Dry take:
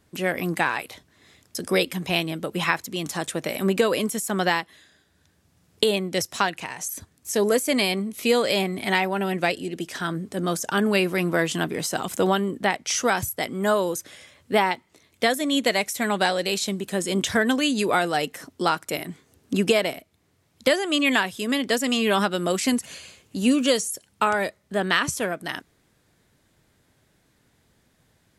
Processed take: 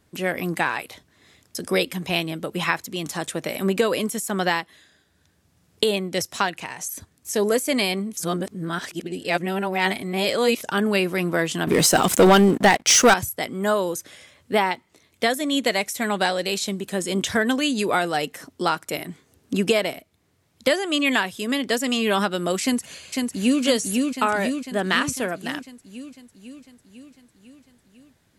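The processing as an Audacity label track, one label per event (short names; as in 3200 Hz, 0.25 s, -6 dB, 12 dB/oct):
8.170000	10.630000	reverse
11.670000	13.140000	sample leveller passes 3
22.620000	23.620000	echo throw 0.5 s, feedback 65%, level -3 dB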